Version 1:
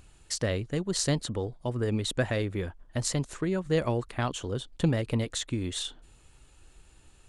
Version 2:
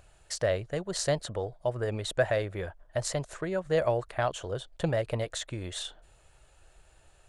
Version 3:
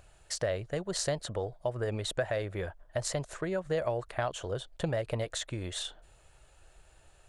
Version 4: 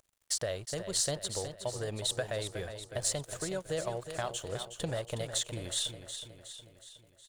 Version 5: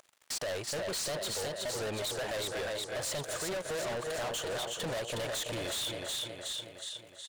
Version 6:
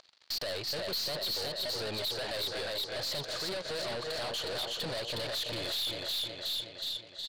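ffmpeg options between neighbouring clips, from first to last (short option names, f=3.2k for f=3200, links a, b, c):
-af "equalizer=f=250:t=o:w=0.67:g=-10,equalizer=f=630:t=o:w=0.67:g=12,equalizer=f=1.6k:t=o:w=0.67:g=5,volume=-3.5dB"
-af "acompressor=threshold=-28dB:ratio=3"
-filter_complex "[0:a]aexciter=amount=1.5:drive=9.1:freq=3.1k,aeval=exprs='sgn(val(0))*max(abs(val(0))-0.00299,0)':c=same,asplit=2[a][b];[b]aecho=0:1:366|732|1098|1464|1830|2196:0.335|0.181|0.0977|0.0527|0.0285|0.0154[c];[a][c]amix=inputs=2:normalize=0,volume=-3.5dB"
-filter_complex "[0:a]asplit=2[a][b];[b]highpass=f=720:p=1,volume=27dB,asoftclip=type=tanh:threshold=-12dB[c];[a][c]amix=inputs=2:normalize=0,lowpass=f=3.4k:p=1,volume=-6dB,aecho=1:1:332:0.2,asoftclip=type=hard:threshold=-28dB,volume=-5.5dB"
-af "lowpass=f=4.4k:t=q:w=5.7,aeval=exprs='(tanh(35.5*val(0)+0.2)-tanh(0.2))/35.5':c=same"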